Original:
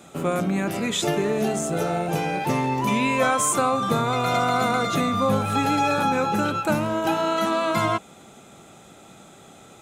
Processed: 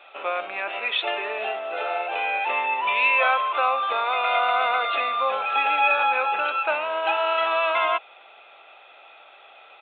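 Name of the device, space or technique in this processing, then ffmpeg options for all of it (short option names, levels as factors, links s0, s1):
musical greeting card: -filter_complex "[0:a]asettb=1/sr,asplit=3[s0][s1][s2];[s0]atrim=end=2.894[s3];[s1]atrim=start=2.89:end=4.39,asetpts=PTS-STARTPTS,afade=t=in:d=0.004:c=qsin,afade=t=out:st=1.496:d=0.004:c=qsin,highpass=210[s4];[s2]atrim=start=4.386[s5];[s3][s4]acrossfade=d=0.004:c1=hsin:c2=qsin[s6];[s6][s5]acrossfade=d=0.004:c1=qsin:c2=hsin,aresample=8000,aresample=44100,highpass=f=600:w=0.5412,highpass=f=600:w=1.3066,equalizer=f=2600:t=o:w=0.21:g=10.5,volume=1.19"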